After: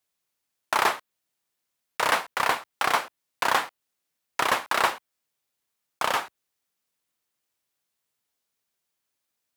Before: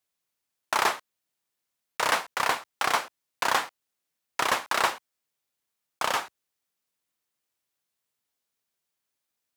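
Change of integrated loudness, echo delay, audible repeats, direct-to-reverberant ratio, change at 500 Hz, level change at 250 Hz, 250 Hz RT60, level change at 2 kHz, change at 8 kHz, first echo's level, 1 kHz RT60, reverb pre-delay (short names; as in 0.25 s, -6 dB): +1.5 dB, none, none, none, +2.0 dB, +2.0 dB, none, +1.5 dB, -1.0 dB, none, none, none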